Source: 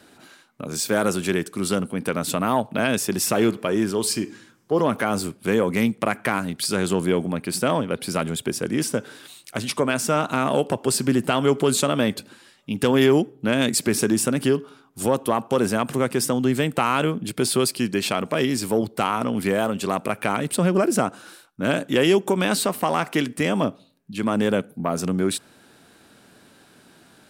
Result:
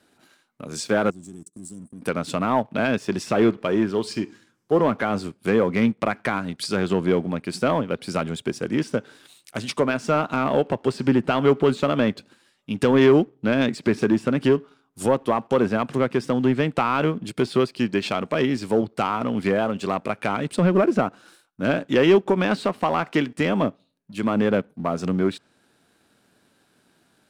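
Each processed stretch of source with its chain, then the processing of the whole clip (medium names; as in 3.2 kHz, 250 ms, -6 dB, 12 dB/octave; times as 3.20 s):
1.10–2.02 s: FFT filter 300 Hz 0 dB, 560 Hz -23 dB, 2.3 kHz -27 dB, 4.7 kHz -9 dB, 7.9 kHz +9 dB, 13 kHz -5 dB + compression 2.5:1, threshold -35 dBFS + gate -43 dBFS, range -15 dB
whole clip: low-pass that closes with the level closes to 2.8 kHz, closed at -17 dBFS; waveshaping leveller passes 1; upward expansion 1.5:1, over -29 dBFS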